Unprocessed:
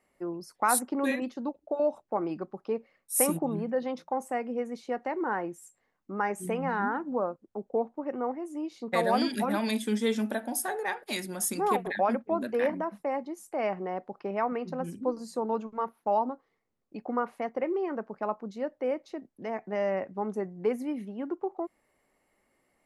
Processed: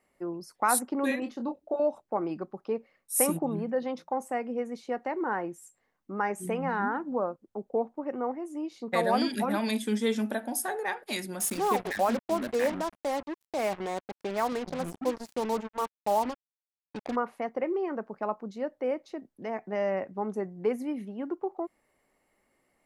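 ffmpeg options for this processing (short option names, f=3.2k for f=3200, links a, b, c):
-filter_complex "[0:a]asettb=1/sr,asplit=3[a][b][c];[a]atrim=end=1.194[d];[b]atrim=start=1.19:end=1.76,asetpts=PTS-STARTPTS,afade=t=in:d=0.004:c=qsin,afade=t=out:st=0.566:d=0.004:c=qsin,asplit=2[e][f];[f]adelay=26,volume=-6.5dB[g];[e][g]amix=inputs=2:normalize=0,atrim=end_sample=25137[h];[c]atrim=start=1.756[i];[d][h]acrossfade=d=0.004:c1=hsin:c2=qsin[j];[j][i]acrossfade=d=0.004:c1=qsin:c2=hsin,asettb=1/sr,asplit=3[k][l][m];[k]atrim=end=11.404[n];[l]atrim=start=11.4:end=17.16,asetpts=PTS-STARTPTS,afade=t=in:d=0.004:c=qsin,afade=t=out:st=5.756:d=0.004:c=qsin,acrusher=bits=5:mix=0:aa=0.5[o];[m]atrim=start=17.156[p];[n][o]acrossfade=d=0.004:c1=hsin:c2=qsin[q];[q][p]acrossfade=d=0.004:c1=qsin:c2=hsin"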